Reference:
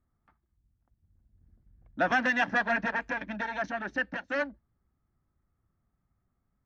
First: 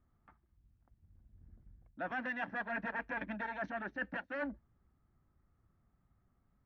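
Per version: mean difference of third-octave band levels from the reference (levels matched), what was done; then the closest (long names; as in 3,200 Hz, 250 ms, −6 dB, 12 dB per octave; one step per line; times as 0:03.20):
3.5 dB: low-pass filter 2,700 Hz 12 dB per octave
reversed playback
downward compressor 6 to 1, threshold −40 dBFS, peak gain reduction 17.5 dB
reversed playback
level +3 dB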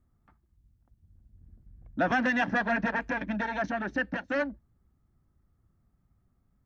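2.0 dB: low-shelf EQ 490 Hz +7.5 dB
in parallel at −1 dB: brickwall limiter −23 dBFS, peak gain reduction 10 dB
on the sum: level −5 dB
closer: second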